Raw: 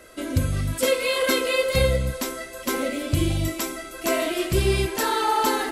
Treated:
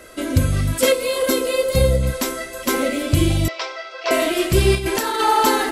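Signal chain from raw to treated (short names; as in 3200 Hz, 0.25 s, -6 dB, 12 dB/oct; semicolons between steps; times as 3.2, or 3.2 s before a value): 0.92–2.03 bell 2100 Hz -9.5 dB 2.3 oct; 3.48–4.11 Chebyshev band-pass 470–5300 Hz, order 4; 4.75–5.21 negative-ratio compressor -26 dBFS, ratio -0.5; gain +5.5 dB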